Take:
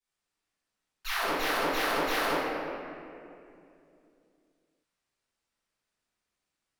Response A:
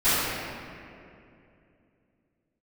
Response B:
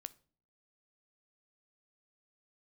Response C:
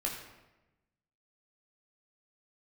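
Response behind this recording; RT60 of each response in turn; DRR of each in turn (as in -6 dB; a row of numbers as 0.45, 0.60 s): A; 2.6 s, not exponential, 1.0 s; -21.0, 14.5, -2.0 dB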